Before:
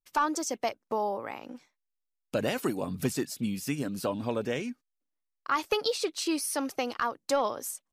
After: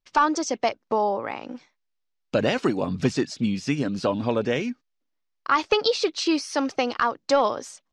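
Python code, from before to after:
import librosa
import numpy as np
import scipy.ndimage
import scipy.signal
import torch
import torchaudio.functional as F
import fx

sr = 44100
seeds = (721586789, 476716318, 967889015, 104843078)

y = scipy.signal.sosfilt(scipy.signal.butter(4, 5900.0, 'lowpass', fs=sr, output='sos'), x)
y = y * 10.0 ** (7.0 / 20.0)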